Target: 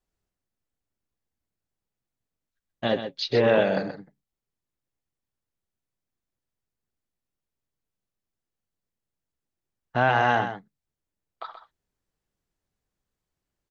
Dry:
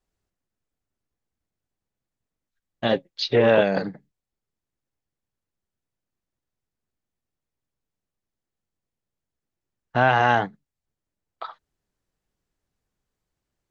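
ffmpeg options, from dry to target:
ffmpeg -i in.wav -af "aecho=1:1:128:0.335,volume=-3dB" out.wav

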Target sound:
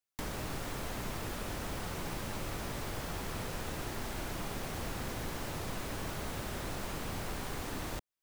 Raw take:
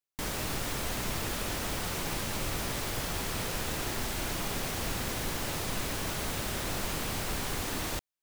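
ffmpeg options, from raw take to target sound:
ffmpeg -i in.wav -filter_complex "[0:a]acrossover=split=230|1800|5900[link_01][link_02][link_03][link_04];[link_01]acompressor=threshold=-38dB:ratio=4[link_05];[link_02]acompressor=threshold=-41dB:ratio=4[link_06];[link_03]acompressor=threshold=-51dB:ratio=4[link_07];[link_04]acompressor=threshold=-50dB:ratio=4[link_08];[link_05][link_06][link_07][link_08]amix=inputs=4:normalize=0" out.wav

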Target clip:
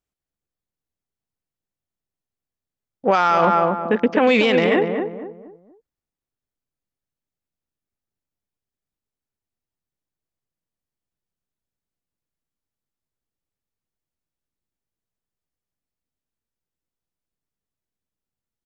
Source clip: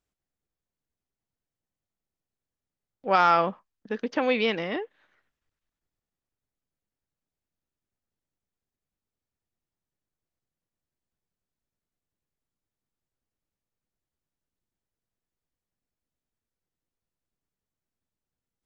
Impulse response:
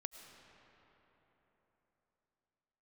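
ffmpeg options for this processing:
-filter_complex "[0:a]afwtdn=0.00708,asplit=2[link_01][link_02];[link_02]adelay=238,lowpass=frequency=1000:poles=1,volume=-6.5dB,asplit=2[link_03][link_04];[link_04]adelay=238,lowpass=frequency=1000:poles=1,volume=0.38,asplit=2[link_05][link_06];[link_06]adelay=238,lowpass=frequency=1000:poles=1,volume=0.38,asplit=2[link_07][link_08];[link_08]adelay=238,lowpass=frequency=1000:poles=1,volume=0.38[link_09];[link_01][link_03][link_05][link_07][link_09]amix=inputs=5:normalize=0,alimiter=level_in=19.5dB:limit=-1dB:release=50:level=0:latency=1,volume=-5.5dB"

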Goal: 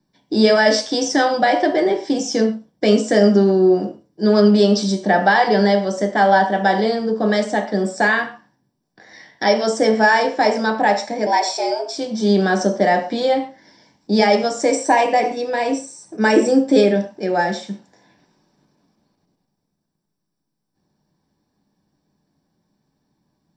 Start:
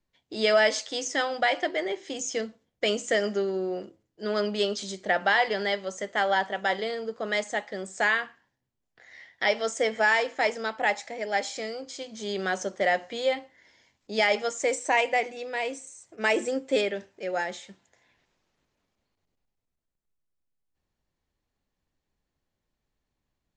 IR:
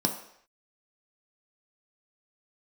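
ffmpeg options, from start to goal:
-filter_complex "[0:a]asplit=2[link_01][link_02];[link_02]alimiter=limit=-22dB:level=0:latency=1,volume=-3dB[link_03];[link_01][link_03]amix=inputs=2:normalize=0,asettb=1/sr,asplit=3[link_04][link_05][link_06];[link_04]atrim=end=11.264[link_07];[link_05]atrim=start=11.26:end=11.96,asetpts=PTS-STARTPTS,afade=type=in:duration=0.004:curve=qsin,afade=type=out:start_time=0.696:duration=0.004:curve=qsin,afreqshift=150[link_08];[link_06]atrim=start=11.956[link_09];[link_07][link_08]acrossfade=duration=0.004:curve1=hsin:curve2=qsin[link_10];[link_10][link_09]acrossfade=duration=0.004:curve1=qsin:curve2=hsin[link_11];[1:a]atrim=start_sample=2205,atrim=end_sample=6174[link_12];[link_11][link_12]afir=irnorm=-1:irlink=0,volume=-3dB"

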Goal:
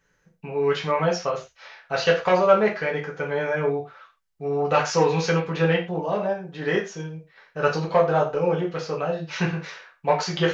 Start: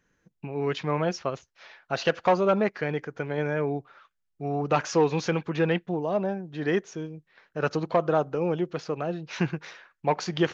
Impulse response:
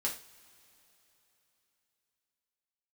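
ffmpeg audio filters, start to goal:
-filter_complex "[0:a]equalizer=frequency=260:width_type=o:width=0.53:gain=-13[link_01];[1:a]atrim=start_sample=2205,afade=type=out:start_time=0.18:duration=0.01,atrim=end_sample=8379[link_02];[link_01][link_02]afir=irnorm=-1:irlink=0,volume=2.5dB"

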